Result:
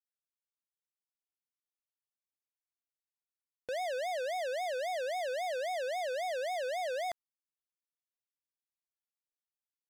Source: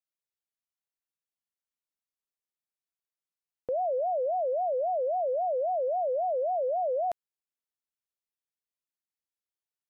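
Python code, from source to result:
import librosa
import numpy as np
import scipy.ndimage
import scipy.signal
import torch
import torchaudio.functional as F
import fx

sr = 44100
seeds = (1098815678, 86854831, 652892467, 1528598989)

y = fx.tilt_shelf(x, sr, db=-5.0, hz=970.0)
y = fx.leveller(y, sr, passes=5)
y = y * librosa.db_to_amplitude(-7.5)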